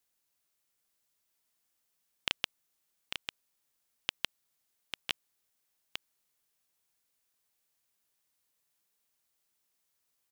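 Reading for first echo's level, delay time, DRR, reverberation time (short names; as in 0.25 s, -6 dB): -6.5 dB, 0.847 s, none, none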